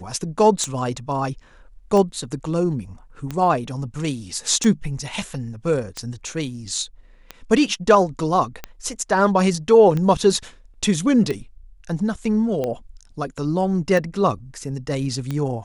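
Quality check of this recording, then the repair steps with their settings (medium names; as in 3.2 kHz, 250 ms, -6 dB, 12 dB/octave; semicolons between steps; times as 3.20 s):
tick 45 rpm -13 dBFS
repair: de-click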